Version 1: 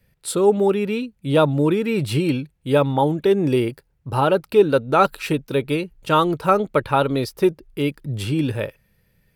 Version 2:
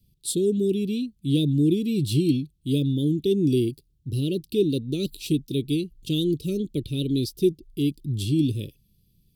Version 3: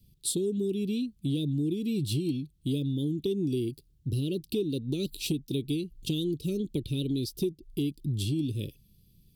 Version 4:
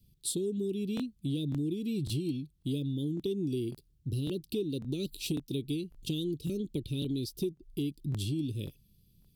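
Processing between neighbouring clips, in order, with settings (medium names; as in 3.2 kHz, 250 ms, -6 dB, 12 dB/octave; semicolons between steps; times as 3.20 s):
elliptic band-stop 340–3400 Hz, stop band 50 dB
compression 5:1, threshold -30 dBFS, peak gain reduction 13.5 dB; trim +2.5 dB
crackling interface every 0.55 s, samples 1024, repeat, from 0.95 s; trim -3.5 dB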